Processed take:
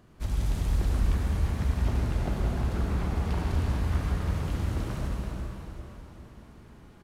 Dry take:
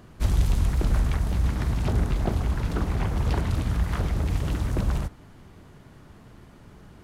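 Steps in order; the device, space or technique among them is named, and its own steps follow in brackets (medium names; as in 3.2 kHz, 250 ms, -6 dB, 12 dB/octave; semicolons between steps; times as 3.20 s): cave (delay 335 ms -9 dB; reverberation RT60 3.0 s, pre-delay 68 ms, DRR -2.5 dB); feedback delay 395 ms, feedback 59%, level -14 dB; trim -8.5 dB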